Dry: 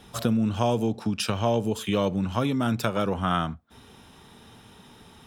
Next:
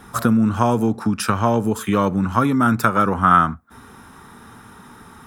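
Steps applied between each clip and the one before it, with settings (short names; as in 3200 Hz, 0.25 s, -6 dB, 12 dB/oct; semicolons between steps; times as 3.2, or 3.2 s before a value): EQ curve 160 Hz 0 dB, 250 Hz +3 dB, 620 Hz -3 dB, 1300 Hz +10 dB, 2000 Hz +2 dB, 3000 Hz -9 dB, 10000 Hz +3 dB; gain +5.5 dB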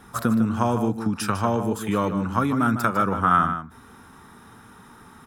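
outdoor echo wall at 26 m, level -9 dB; gain -5 dB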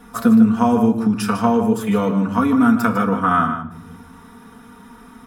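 reverb, pre-delay 4 ms, DRR -0.5 dB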